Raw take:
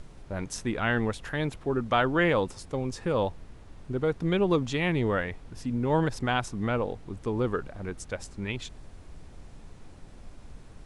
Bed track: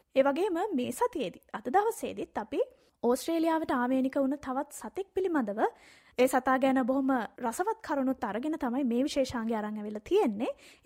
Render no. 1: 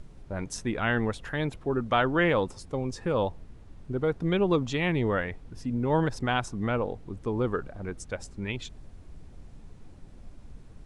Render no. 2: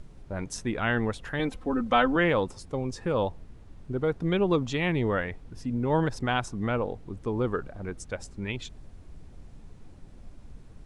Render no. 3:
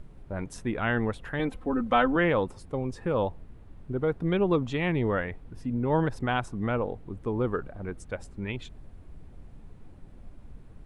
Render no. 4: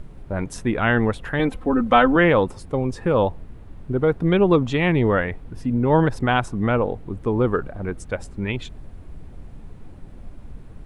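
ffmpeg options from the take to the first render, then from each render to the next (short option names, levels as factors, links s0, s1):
-af "afftdn=nr=6:nf=-49"
-filter_complex "[0:a]asettb=1/sr,asplit=3[s0][s1][s2];[s0]atrim=end=1.394[s3];[s1]atrim=start=1.39:end=2.16,asetpts=PTS-STARTPTS,afade=t=in:d=0.004:c=qsin,afade=t=out:st=0.766:d=0.004:c=qsin,aecho=1:1:3.9:0.78,atrim=end_sample=33957[s4];[s2]atrim=start=2.156[s5];[s3][s4]acrossfade=d=0.004:c1=hsin:c2=qsin[s6];[s6][s5]acrossfade=d=0.004:c1=qsin:c2=hsin"
-af "equalizer=f=5900:w=0.91:g=-10"
-af "volume=2.51,alimiter=limit=0.794:level=0:latency=1"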